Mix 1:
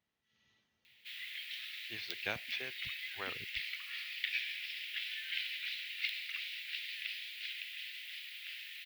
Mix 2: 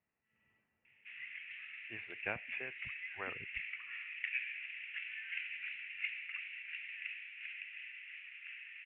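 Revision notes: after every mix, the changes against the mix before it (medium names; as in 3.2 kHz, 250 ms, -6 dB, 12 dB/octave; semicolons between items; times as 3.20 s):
master: add Chebyshev low-pass 2.7 kHz, order 6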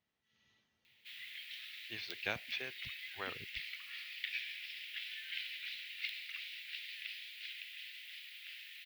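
background -4.0 dB; master: remove Chebyshev low-pass 2.7 kHz, order 6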